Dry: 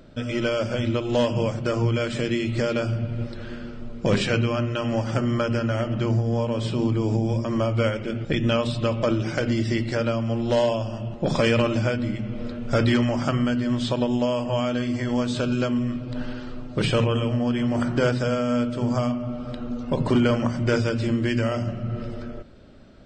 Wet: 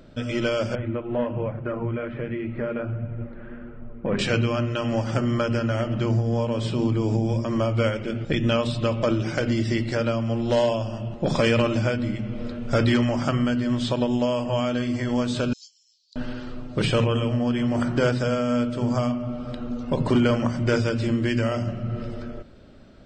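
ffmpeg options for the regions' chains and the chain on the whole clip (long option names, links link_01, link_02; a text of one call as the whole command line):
ffmpeg -i in.wav -filter_complex "[0:a]asettb=1/sr,asplit=3[link_01][link_02][link_03];[link_01]atrim=end=0.754[link_04];[link_02]atrim=start=0.75:end=4.19,asetpts=PTS-STARTPTS,afade=type=in:duration=0.004:curve=qsin,afade=type=out:start_time=3.436:duration=0.004:curve=qsin,lowpass=frequency=2100:width=0.5412,lowpass=frequency=2100:width=1.3066,flanger=delay=1.1:depth=4.4:regen=-50:speed=1.3:shape=triangular[link_05];[link_03]atrim=start=4.186[link_06];[link_04][link_05]acrossfade=duration=0.004:curve1=hsin:curve2=qsin[link_07];[link_07][link_06]acrossfade=duration=0.004:curve1=qsin:curve2=hsin,asettb=1/sr,asplit=3[link_08][link_09][link_10];[link_08]atrim=end=15.534[link_11];[link_09]atrim=start=15.53:end=16.16,asetpts=PTS-STARTPTS,afade=type=in:duration=0.004:curve=qsin,afade=type=out:start_time=0.626:duration=0.004:curve=qsin,asuperpass=centerf=5500:order=8:qfactor=1.7,asplit=2[link_12][link_13];[link_13]adelay=28,volume=-12dB[link_14];[link_12][link_14]amix=inputs=2:normalize=0,atrim=end_sample=27783[link_15];[link_10]atrim=start=16.156[link_16];[link_11][link_15]acrossfade=duration=0.004:curve1=hsin:curve2=qsin[link_17];[link_17][link_16]acrossfade=duration=0.004:curve1=qsin:curve2=hsin" out.wav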